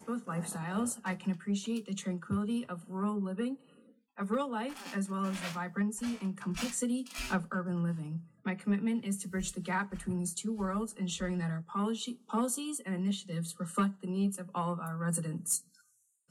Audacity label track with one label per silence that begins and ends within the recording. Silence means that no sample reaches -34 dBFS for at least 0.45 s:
3.540000	4.190000	silence